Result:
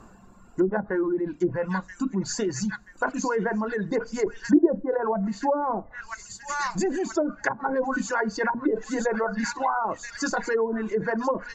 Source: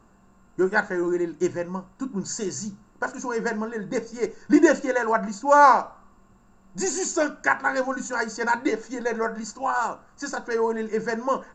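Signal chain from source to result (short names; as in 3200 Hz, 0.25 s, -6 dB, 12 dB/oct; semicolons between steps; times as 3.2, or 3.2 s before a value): thin delay 0.979 s, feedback 57%, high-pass 2400 Hz, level -7 dB; treble ducked by the level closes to 400 Hz, closed at -17.5 dBFS; in parallel at -2 dB: negative-ratio compressor -32 dBFS, ratio -1; on the sum: reverb removal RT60 1.5 s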